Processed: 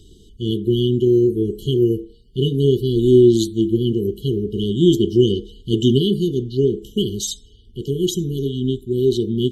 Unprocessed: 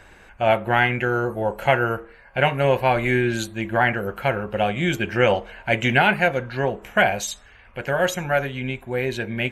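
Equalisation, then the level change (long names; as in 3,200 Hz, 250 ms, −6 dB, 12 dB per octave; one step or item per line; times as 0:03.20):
dynamic equaliser 340 Hz, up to +7 dB, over −38 dBFS, Q 2.1
linear-phase brick-wall band-stop 460–2,900 Hz
high-shelf EQ 6,800 Hz −5 dB
+6.0 dB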